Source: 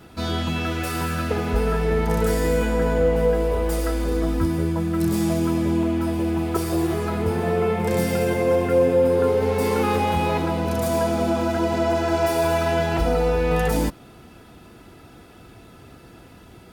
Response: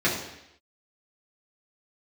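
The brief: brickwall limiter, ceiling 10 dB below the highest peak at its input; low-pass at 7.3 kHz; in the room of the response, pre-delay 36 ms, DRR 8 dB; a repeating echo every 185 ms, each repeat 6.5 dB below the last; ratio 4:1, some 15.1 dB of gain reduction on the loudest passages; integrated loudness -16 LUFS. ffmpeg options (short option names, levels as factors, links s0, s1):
-filter_complex "[0:a]lowpass=7300,acompressor=threshold=0.02:ratio=4,alimiter=level_in=2.66:limit=0.0631:level=0:latency=1,volume=0.376,aecho=1:1:185|370|555|740|925|1110:0.473|0.222|0.105|0.0491|0.0231|0.0109,asplit=2[s0][s1];[1:a]atrim=start_sample=2205,adelay=36[s2];[s1][s2]afir=irnorm=-1:irlink=0,volume=0.0708[s3];[s0][s3]amix=inputs=2:normalize=0,volume=15"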